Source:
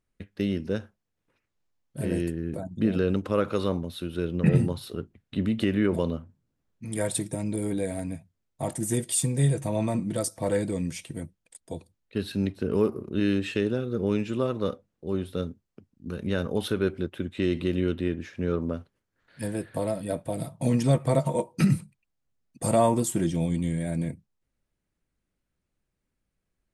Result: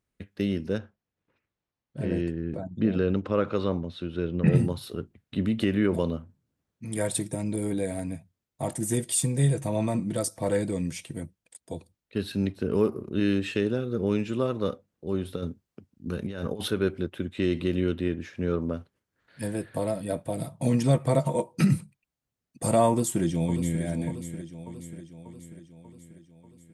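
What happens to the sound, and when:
0:00.78–0:04.48: high-frequency loss of the air 120 metres
0:15.25–0:16.72: compressor whose output falls as the input rises −30 dBFS, ratio −0.5
0:22.89–0:23.82: delay throw 590 ms, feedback 60%, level −10.5 dB
whole clip: high-pass filter 45 Hz

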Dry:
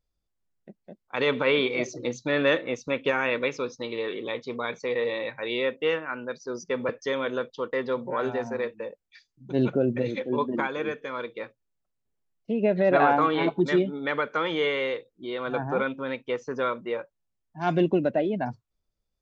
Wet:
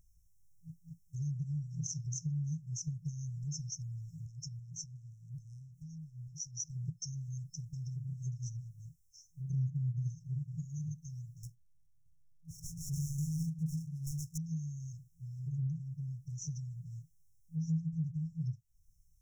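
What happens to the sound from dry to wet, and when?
0:04.26–0:06.60: downward compressor 3 to 1, threshold −40 dBFS
0:11.43–0:14.38: running median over 25 samples
whole clip: brick-wall band-stop 170–5,300 Hz; dynamic equaliser 160 Hz, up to +6 dB, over −54 dBFS, Q 4.2; downward compressor 2.5 to 1, threshold −55 dBFS; level +14.5 dB

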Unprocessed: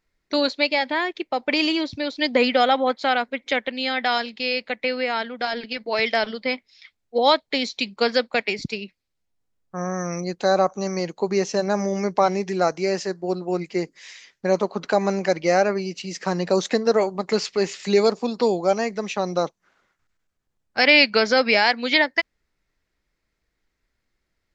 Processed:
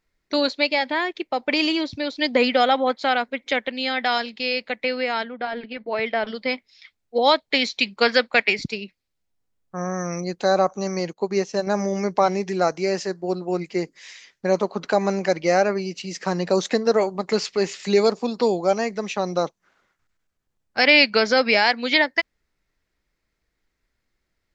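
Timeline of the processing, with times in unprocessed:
0:05.24–0:06.27: high-frequency loss of the air 380 metres
0:07.43–0:08.67: dynamic equaliser 1,900 Hz, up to +7 dB, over −36 dBFS, Q 0.72
0:11.13–0:11.67: expander for the loud parts, over −42 dBFS

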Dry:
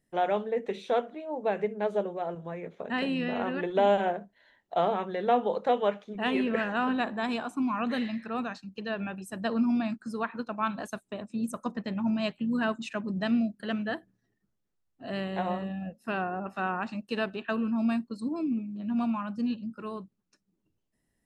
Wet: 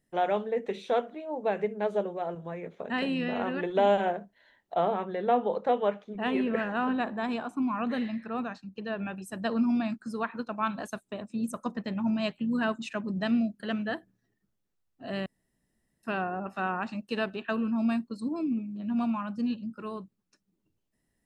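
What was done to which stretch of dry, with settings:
0:04.74–0:09.06: high-shelf EQ 2,600 Hz −7.5 dB
0:15.26–0:16.03: fill with room tone

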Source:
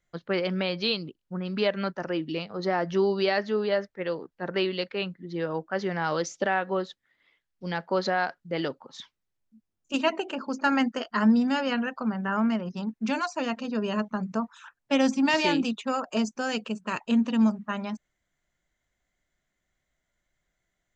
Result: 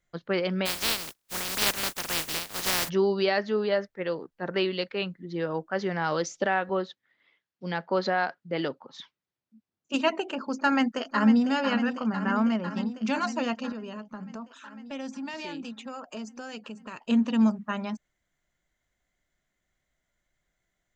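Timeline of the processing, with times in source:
0:00.65–0:02.88: compressing power law on the bin magnitudes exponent 0.14
0:06.69–0:09.93: band-pass filter 110–5,200 Hz
0:10.55–0:11.47: delay throw 500 ms, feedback 75%, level −9.5 dB
0:13.72–0:17.02: downward compressor 2.5 to 1, threshold −40 dBFS

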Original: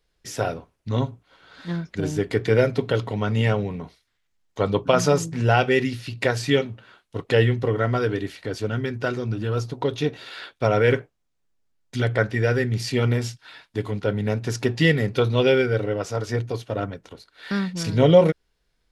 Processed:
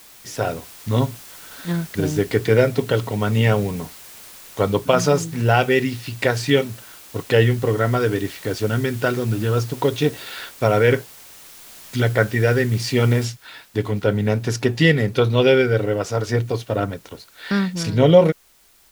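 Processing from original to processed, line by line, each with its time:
0:13.25: noise floor change −46 dB −58 dB
whole clip: automatic gain control gain up to 5 dB

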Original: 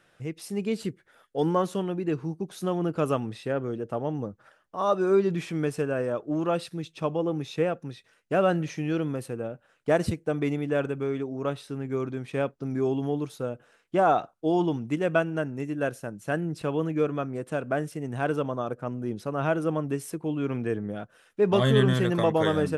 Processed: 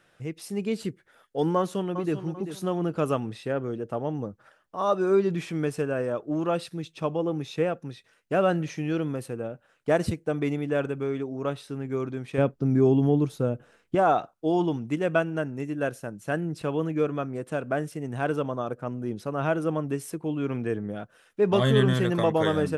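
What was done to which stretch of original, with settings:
0:01.56–0:02.16: delay throw 390 ms, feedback 30%, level −10.5 dB
0:12.38–0:13.95: low-shelf EQ 390 Hz +10.5 dB

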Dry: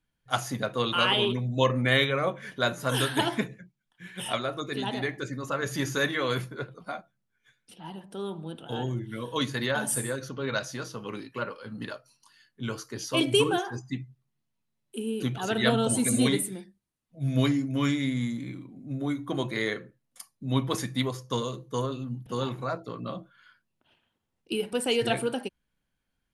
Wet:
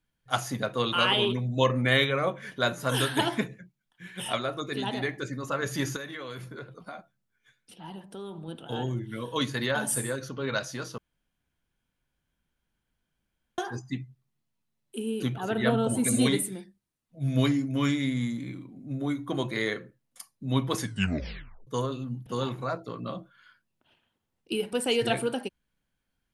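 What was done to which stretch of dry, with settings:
0:05.96–0:08.48: downward compressor 5 to 1, threshold −36 dBFS
0:10.98–0:13.58: fill with room tone
0:15.34–0:16.04: parametric band 5,600 Hz −11.5 dB 2.1 octaves
0:20.81: tape stop 0.86 s

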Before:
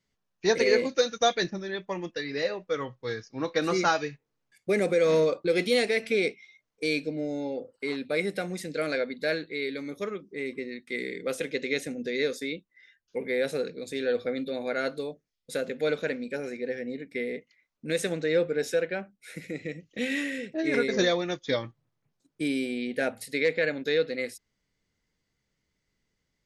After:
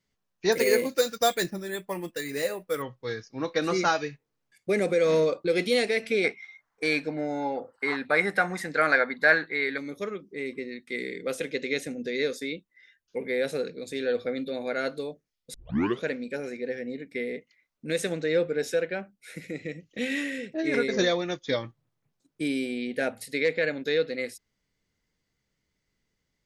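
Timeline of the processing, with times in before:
0:00.52–0:02.82: bad sample-rate conversion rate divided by 4×, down none, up hold
0:06.24–0:09.78: flat-topped bell 1,200 Hz +14 dB
0:15.54: tape start 0.48 s

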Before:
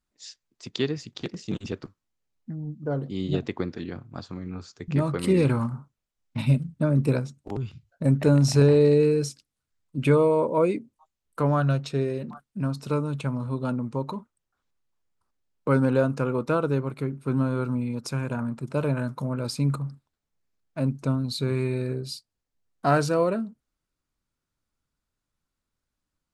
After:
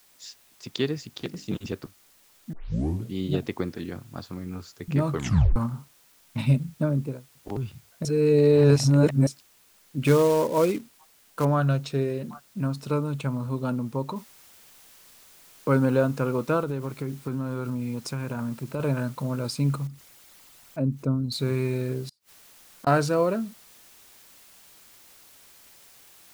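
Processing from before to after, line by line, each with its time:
0:01.09–0:01.49: mains-hum notches 50/100/150/200/250/300 Hz
0:02.53: tape start 0.62 s
0:05.13: tape stop 0.43 s
0:06.70–0:07.35: fade out and dull
0:08.05–0:09.27: reverse
0:10.02–0:11.45: floating-point word with a short mantissa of 2 bits
0:14.16: noise floor change −59 dB −53 dB
0:16.61–0:18.80: downward compressor, threshold −25 dBFS
0:19.87–0:21.32: spectral envelope exaggerated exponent 1.5
0:22.06–0:22.87: gate with flip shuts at −29 dBFS, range −33 dB

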